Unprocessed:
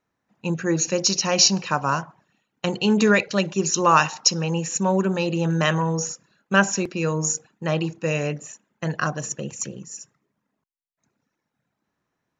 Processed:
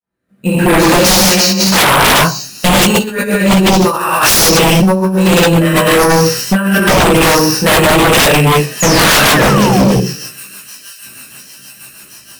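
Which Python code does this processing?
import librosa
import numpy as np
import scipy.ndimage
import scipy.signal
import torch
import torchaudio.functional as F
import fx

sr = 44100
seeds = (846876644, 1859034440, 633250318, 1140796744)

y = fx.fade_in_head(x, sr, length_s=1.59)
y = np.repeat(scipy.signal.resample_poly(y, 1, 4), 4)[:len(y)]
y = fx.echo_wet_highpass(y, sr, ms=713, feedback_pct=79, hz=4600.0, wet_db=-22)
y = fx.rev_gated(y, sr, seeds[0], gate_ms=300, shape='flat', drr_db=-8.0)
y = fx.over_compress(y, sr, threshold_db=-18.0, ratio=-0.5)
y = fx.rotary_switch(y, sr, hz=0.9, then_hz=6.3, switch_at_s=7.99)
y = fx.doubler(y, sr, ms=16.0, db=-4)
y = fx.spec_paint(y, sr, seeds[1], shape='fall', start_s=8.8, length_s=1.21, low_hz=410.0, high_hz=7100.0, level_db=-31.0)
y = fx.fold_sine(y, sr, drive_db=14, ceiling_db=-5.0)
y = fx.low_shelf(y, sr, hz=170.0, db=-8.0, at=(1.29, 1.91))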